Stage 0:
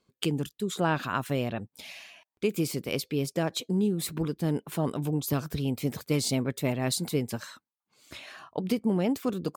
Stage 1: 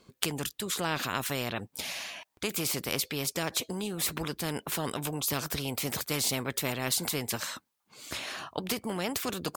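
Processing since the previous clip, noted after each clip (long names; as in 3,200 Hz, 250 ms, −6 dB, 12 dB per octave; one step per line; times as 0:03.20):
every bin compressed towards the loudest bin 2 to 1
level +4.5 dB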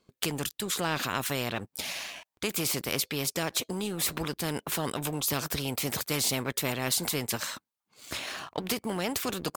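leveller curve on the samples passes 2
level −6 dB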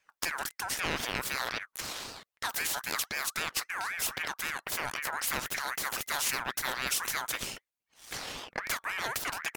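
harmonic generator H 6 −22 dB, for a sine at −13.5 dBFS
ring modulator whose carrier an LFO sweeps 1,600 Hz, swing 30%, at 3.8 Hz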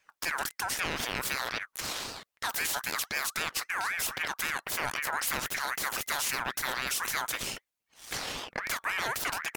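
brickwall limiter −22 dBFS, peak gain reduction 7.5 dB
level +3.5 dB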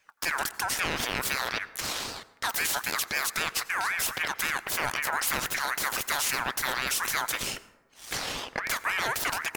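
dense smooth reverb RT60 1.1 s, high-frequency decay 0.4×, pre-delay 75 ms, DRR 17 dB
level +3 dB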